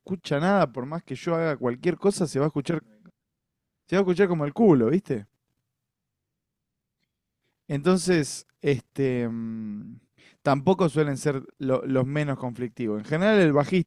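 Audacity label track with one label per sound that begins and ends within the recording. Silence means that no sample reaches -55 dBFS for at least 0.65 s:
3.880000	5.250000	sound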